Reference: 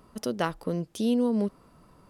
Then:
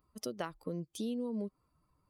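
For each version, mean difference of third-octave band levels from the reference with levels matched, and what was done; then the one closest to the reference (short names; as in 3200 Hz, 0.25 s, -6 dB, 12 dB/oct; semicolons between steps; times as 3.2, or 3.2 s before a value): 4.5 dB: per-bin expansion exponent 1.5; low shelf 87 Hz -7.5 dB; compressor, threshold -31 dBFS, peak gain reduction 9 dB; gain -3 dB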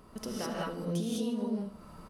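9.5 dB: compressor 3:1, threshold -41 dBFS, peak gain reduction 14.5 dB; on a send: feedback echo 76 ms, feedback 54%, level -14.5 dB; on the sum: non-linear reverb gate 0.23 s rising, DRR -5.5 dB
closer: first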